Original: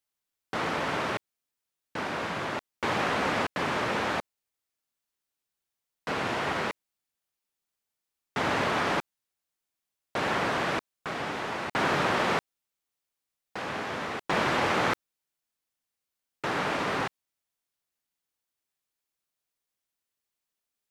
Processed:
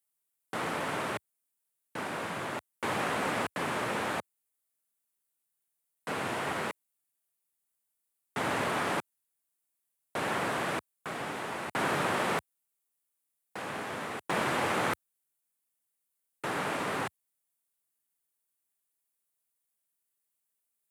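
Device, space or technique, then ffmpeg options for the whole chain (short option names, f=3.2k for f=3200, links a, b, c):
budget condenser microphone: -af "highpass=f=82:w=0.5412,highpass=f=82:w=1.3066,highshelf=f=7.2k:t=q:w=1.5:g=8.5,volume=-3.5dB"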